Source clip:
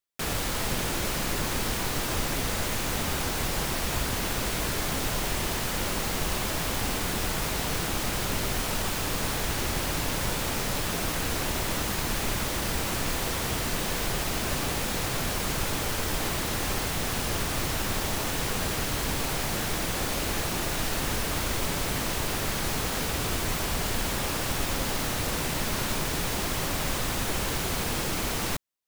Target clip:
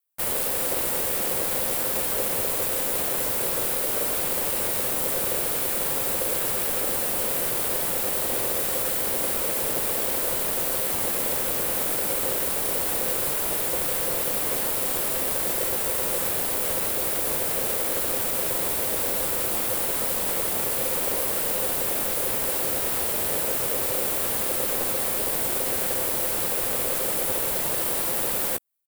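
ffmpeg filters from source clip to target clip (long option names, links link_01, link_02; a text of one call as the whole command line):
ffmpeg -i in.wav -filter_complex "[0:a]aeval=exprs='val(0)*sin(2*PI*520*n/s)':channel_layout=same,asplit=2[link_01][link_02];[link_02]asetrate=33038,aresample=44100,atempo=1.33484,volume=-9dB[link_03];[link_01][link_03]amix=inputs=2:normalize=0,aexciter=amount=4.5:drive=3.2:freq=8300" out.wav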